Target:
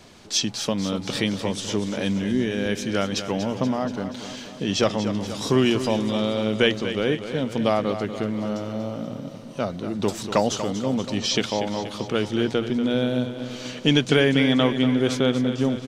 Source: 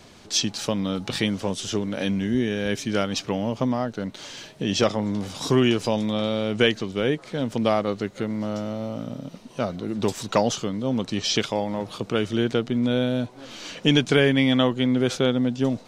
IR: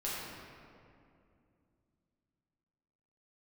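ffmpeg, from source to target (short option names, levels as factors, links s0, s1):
-af "bandreject=f=60:t=h:w=6,bandreject=f=120:t=h:w=6,aecho=1:1:239|478|717|956|1195|1434|1673:0.299|0.179|0.107|0.0645|0.0387|0.0232|0.0139"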